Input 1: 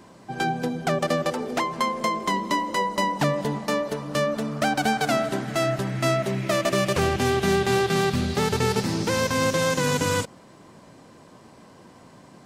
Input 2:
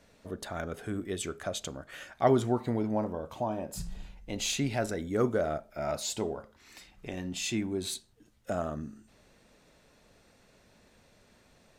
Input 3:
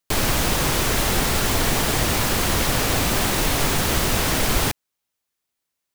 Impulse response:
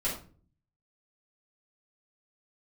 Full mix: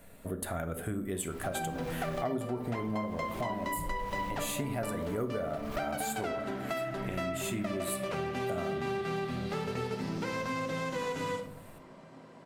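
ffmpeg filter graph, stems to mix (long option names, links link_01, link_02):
-filter_complex "[0:a]highpass=frequency=290:poles=1,adelay=1150,volume=-6.5dB,asplit=2[link_01][link_02];[link_02]volume=-6dB[link_03];[1:a]aexciter=amount=7.5:drive=8.4:freq=8100,volume=2.5dB,asplit=3[link_04][link_05][link_06];[link_05]volume=-11dB[link_07];[2:a]asoftclip=type=tanh:threshold=-23dB,adelay=1200,volume=-8.5dB[link_08];[link_06]apad=whole_len=314933[link_09];[link_08][link_09]sidechaincompress=threshold=-39dB:ratio=8:attack=21:release=254[link_10];[3:a]atrim=start_sample=2205[link_11];[link_03][link_07]amix=inputs=2:normalize=0[link_12];[link_12][link_11]afir=irnorm=-1:irlink=0[link_13];[link_01][link_04][link_10][link_13]amix=inputs=4:normalize=0,bass=frequency=250:gain=3,treble=frequency=4000:gain=-10,acompressor=threshold=-32dB:ratio=5"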